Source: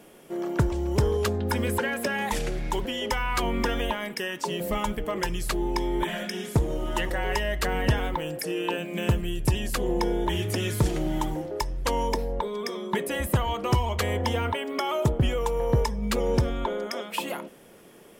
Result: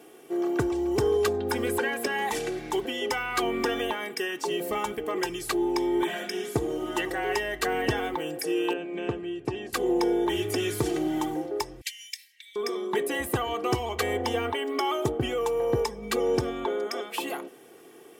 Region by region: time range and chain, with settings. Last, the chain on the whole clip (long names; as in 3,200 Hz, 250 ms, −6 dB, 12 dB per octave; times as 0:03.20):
0:08.73–0:09.73: high-pass filter 160 Hz 6 dB per octave + head-to-tape spacing loss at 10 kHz 24 dB
0:11.81–0:12.56: Butterworth high-pass 1,900 Hz 72 dB per octave + upward compression, threshold −56 dBFS
whole clip: high-pass filter 210 Hz 12 dB per octave; low-shelf EQ 290 Hz +5.5 dB; comb filter 2.6 ms, depth 66%; level −2 dB